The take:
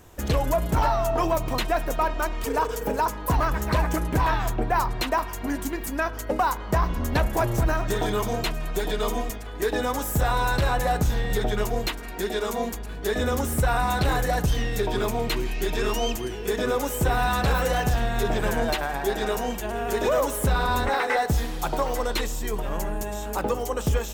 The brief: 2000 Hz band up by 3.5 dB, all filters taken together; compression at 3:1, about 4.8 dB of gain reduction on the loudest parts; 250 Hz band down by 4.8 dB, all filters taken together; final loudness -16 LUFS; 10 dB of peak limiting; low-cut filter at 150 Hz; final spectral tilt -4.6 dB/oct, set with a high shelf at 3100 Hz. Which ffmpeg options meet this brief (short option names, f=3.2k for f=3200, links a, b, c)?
-af "highpass=150,equalizer=f=250:t=o:g=-5.5,equalizer=f=2k:t=o:g=7,highshelf=f=3.1k:g=-7,acompressor=threshold=-25dB:ratio=3,volume=16.5dB,alimiter=limit=-6dB:level=0:latency=1"